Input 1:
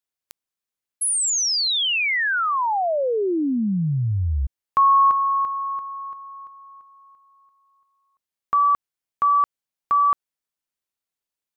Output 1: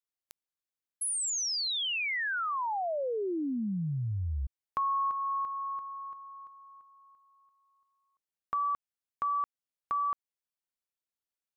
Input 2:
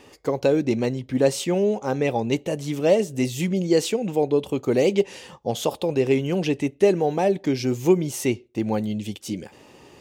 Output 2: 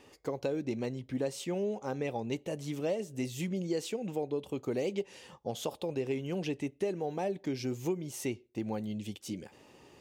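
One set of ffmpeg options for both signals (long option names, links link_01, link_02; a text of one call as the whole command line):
ffmpeg -i in.wav -af "acompressor=threshold=-20dB:ratio=4:attack=12:release=429:knee=6:detection=rms,volume=-8.5dB" out.wav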